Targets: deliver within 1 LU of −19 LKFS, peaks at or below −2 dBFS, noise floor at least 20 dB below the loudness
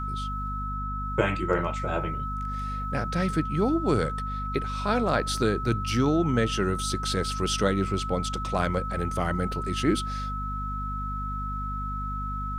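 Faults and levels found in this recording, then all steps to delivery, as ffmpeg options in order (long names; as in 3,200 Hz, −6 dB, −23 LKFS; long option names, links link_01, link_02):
mains hum 50 Hz; hum harmonics up to 250 Hz; level of the hum −31 dBFS; interfering tone 1,300 Hz; level of the tone −32 dBFS; integrated loudness −28.0 LKFS; sample peak −8.5 dBFS; target loudness −19.0 LKFS
→ -af "bandreject=frequency=50:width_type=h:width=4,bandreject=frequency=100:width_type=h:width=4,bandreject=frequency=150:width_type=h:width=4,bandreject=frequency=200:width_type=h:width=4,bandreject=frequency=250:width_type=h:width=4"
-af "bandreject=frequency=1300:width=30"
-af "volume=9dB,alimiter=limit=-2dB:level=0:latency=1"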